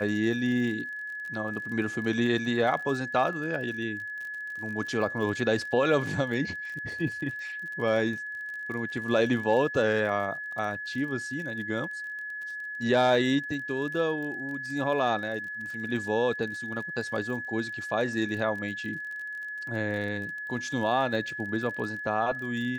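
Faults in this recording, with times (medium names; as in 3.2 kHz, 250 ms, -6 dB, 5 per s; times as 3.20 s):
crackle 33 per s -37 dBFS
whine 1.7 kHz -34 dBFS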